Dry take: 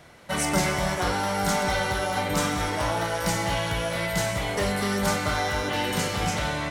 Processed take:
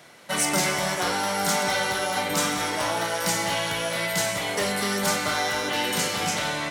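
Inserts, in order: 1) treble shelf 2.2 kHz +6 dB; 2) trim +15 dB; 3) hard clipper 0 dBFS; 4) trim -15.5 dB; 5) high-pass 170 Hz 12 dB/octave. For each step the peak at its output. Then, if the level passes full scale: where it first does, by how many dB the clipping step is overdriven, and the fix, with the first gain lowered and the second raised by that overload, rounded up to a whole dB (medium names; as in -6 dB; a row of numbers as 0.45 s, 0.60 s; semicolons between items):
-8.0 dBFS, +7.0 dBFS, 0.0 dBFS, -15.5 dBFS, -11.5 dBFS; step 2, 7.0 dB; step 2 +8 dB, step 4 -8.5 dB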